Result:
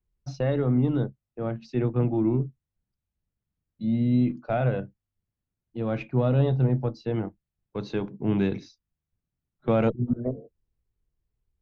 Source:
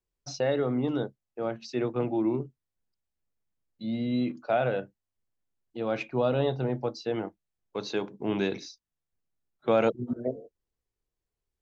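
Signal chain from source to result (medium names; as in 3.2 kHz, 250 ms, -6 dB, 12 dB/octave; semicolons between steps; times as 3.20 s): Chebyshev shaper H 6 -33 dB, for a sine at -11.5 dBFS; tone controls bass +14 dB, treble -10 dB; trim -2 dB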